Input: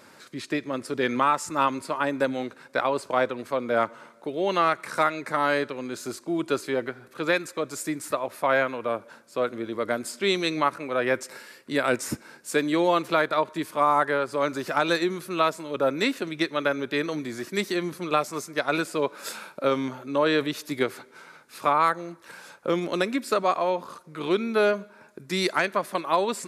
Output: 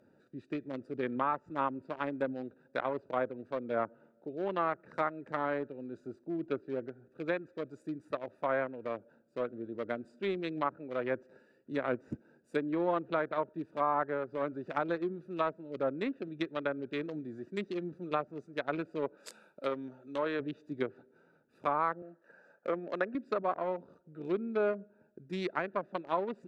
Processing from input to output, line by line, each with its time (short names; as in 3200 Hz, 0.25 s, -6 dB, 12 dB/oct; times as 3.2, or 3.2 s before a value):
6–7.05 high shelf 3400 Hz -5 dB
19.17–20.4 tilt +2.5 dB/oct
22.02–23.15 speaker cabinet 240–8200 Hz, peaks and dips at 320 Hz -5 dB, 630 Hz +6 dB, 1200 Hz +4 dB, 1700 Hz +8 dB, 3400 Hz -7 dB
whole clip: Wiener smoothing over 41 samples; treble ducked by the level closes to 1600 Hz, closed at -21 dBFS; gain -7.5 dB